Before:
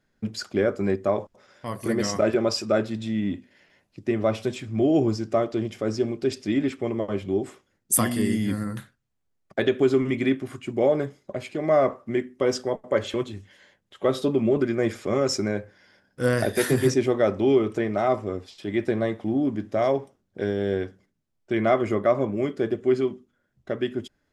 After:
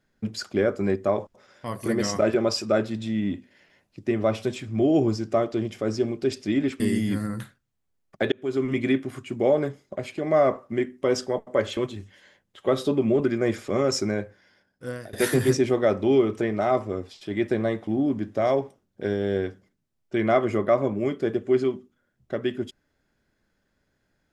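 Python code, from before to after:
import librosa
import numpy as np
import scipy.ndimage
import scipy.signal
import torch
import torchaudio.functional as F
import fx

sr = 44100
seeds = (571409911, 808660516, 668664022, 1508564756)

y = fx.edit(x, sr, fx.cut(start_s=6.8, length_s=1.37),
    fx.fade_in_span(start_s=9.69, length_s=0.43),
    fx.fade_out_to(start_s=15.5, length_s=1.0, floor_db=-23.5), tone=tone)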